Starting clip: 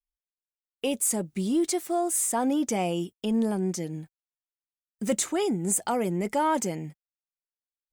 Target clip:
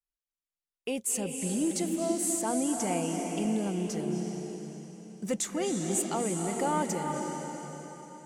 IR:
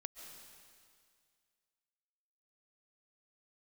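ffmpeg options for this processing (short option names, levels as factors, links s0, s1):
-filter_complex "[0:a]asetrate=42336,aresample=44100[s0];[1:a]atrim=start_sample=2205,asetrate=24255,aresample=44100[s1];[s0][s1]afir=irnorm=-1:irlink=0,volume=0.708"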